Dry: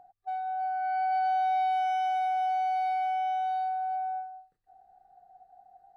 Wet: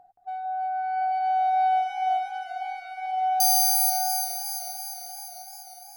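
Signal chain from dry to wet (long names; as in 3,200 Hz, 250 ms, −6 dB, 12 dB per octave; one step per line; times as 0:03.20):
0:03.40–0:03.90: bad sample-rate conversion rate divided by 8×, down none, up zero stuff
delay that swaps between a low-pass and a high-pass 173 ms, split 2,300 Hz, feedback 79%, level −6 dB
feedback echo with a swinging delay time 491 ms, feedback 65%, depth 133 cents, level −16.5 dB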